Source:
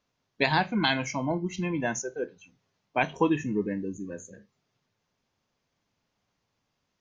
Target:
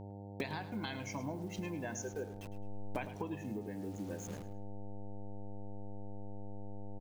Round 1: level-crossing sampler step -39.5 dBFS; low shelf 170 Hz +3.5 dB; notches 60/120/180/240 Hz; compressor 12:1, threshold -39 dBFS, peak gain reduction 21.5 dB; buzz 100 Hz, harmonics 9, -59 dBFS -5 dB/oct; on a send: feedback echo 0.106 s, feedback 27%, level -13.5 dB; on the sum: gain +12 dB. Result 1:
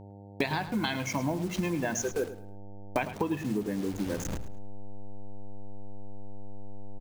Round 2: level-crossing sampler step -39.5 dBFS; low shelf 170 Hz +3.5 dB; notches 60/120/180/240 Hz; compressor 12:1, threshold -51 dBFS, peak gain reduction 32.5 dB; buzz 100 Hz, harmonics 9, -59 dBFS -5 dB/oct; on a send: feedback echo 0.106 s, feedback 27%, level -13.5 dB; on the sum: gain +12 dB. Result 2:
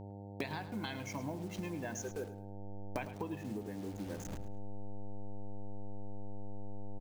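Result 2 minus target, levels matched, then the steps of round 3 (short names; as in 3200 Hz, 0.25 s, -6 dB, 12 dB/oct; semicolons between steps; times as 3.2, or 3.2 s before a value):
level-crossing sampler: distortion +7 dB
level-crossing sampler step -46 dBFS; low shelf 170 Hz +3.5 dB; notches 60/120/180/240 Hz; compressor 12:1, threshold -51 dBFS, peak gain reduction 32.5 dB; buzz 100 Hz, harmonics 9, -59 dBFS -5 dB/oct; on a send: feedback echo 0.106 s, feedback 27%, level -13.5 dB; on the sum: gain +12 dB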